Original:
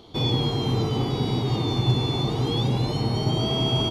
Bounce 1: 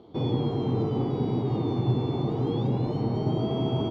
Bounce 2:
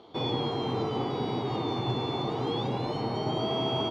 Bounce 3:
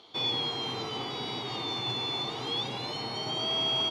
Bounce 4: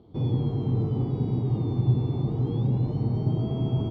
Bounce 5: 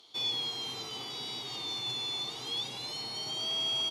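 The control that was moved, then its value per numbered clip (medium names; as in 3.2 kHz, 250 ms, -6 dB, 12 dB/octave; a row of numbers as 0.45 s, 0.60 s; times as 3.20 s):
band-pass filter, frequency: 310 Hz, 830 Hz, 2.4 kHz, 120 Hz, 7 kHz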